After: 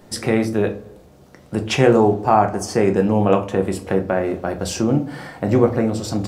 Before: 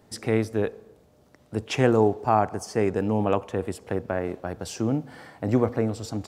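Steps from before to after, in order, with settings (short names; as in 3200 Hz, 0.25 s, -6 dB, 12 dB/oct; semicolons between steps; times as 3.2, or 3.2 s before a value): in parallel at -1 dB: compressor, threshold -31 dBFS, peak gain reduction 16 dB; on the sum: shoebox room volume 150 m³, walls furnished, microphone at 0.95 m; gain +3.5 dB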